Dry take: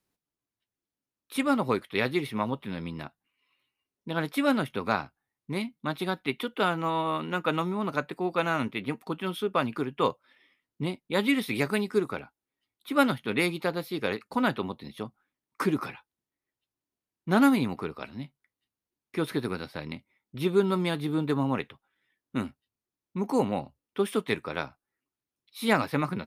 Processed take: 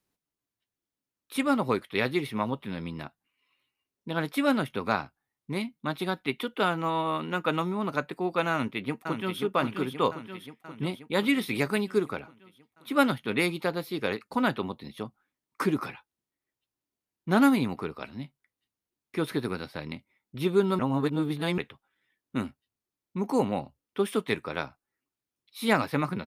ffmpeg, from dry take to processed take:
-filter_complex "[0:a]asplit=2[a][b];[b]afade=t=in:st=8.52:d=0.01,afade=t=out:st=9.4:d=0.01,aecho=0:1:530|1060|1590|2120|2650|3180|3710|4240|4770:0.473151|0.307548|0.199906|0.129939|0.0844605|0.0548993|0.0356845|0.023195|0.0150767[c];[a][c]amix=inputs=2:normalize=0,asplit=3[d][e][f];[d]atrim=end=20.792[g];[e]atrim=start=20.788:end=21.582,asetpts=PTS-STARTPTS,areverse[h];[f]atrim=start=21.578[i];[g][h]acrossfade=d=0.004:c1=hsin:c2=hsin[j];[j][i]acrossfade=d=0.004:c1=hsin:c2=hsin"

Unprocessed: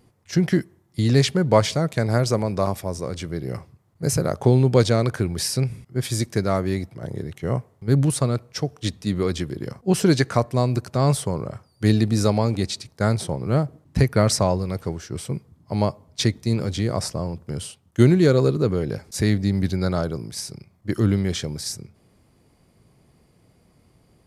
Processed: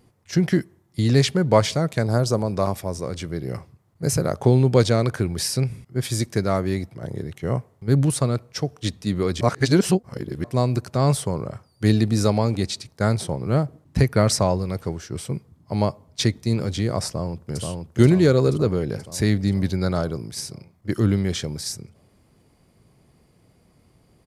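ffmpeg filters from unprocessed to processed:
-filter_complex "[0:a]asettb=1/sr,asplit=3[a][b][c];[a]atrim=end=2.024[d];[b]atrim=start=2.02:end=2.53,asetpts=PTS-STARTPTS,afade=t=in:d=0.004:c=qsin,afade=t=out:st=0.506:d=0.004:c=qsin,equalizer=f=2.1k:t=o:w=0.58:g=-12[e];[c]atrim=start=2.526[f];[d][e]acrossfade=d=0.004:c1=hsin:c2=qsin[g];[g][f]acrossfade=d=0.004:c1=qsin:c2=hsin,asplit=2[h][i];[i]afade=t=in:st=17.07:d=0.01,afade=t=out:st=17.61:d=0.01,aecho=0:1:480|960|1440|1920|2400|2880|3360|3840|4320|4800:0.707946|0.460165|0.299107|0.19442|0.126373|0.0821423|0.0533925|0.0347051|0.0225583|0.0146629[j];[h][j]amix=inputs=2:normalize=0,asplit=3[k][l][m];[k]atrim=end=9.412[n];[l]atrim=start=9.408:end=10.442,asetpts=PTS-STARTPTS,areverse[o];[m]atrim=start=10.438[p];[n][o]acrossfade=d=0.004:c1=hsin:c2=hsin[q];[q][p]acrossfade=d=0.004:c1=hsin:c2=hsin"

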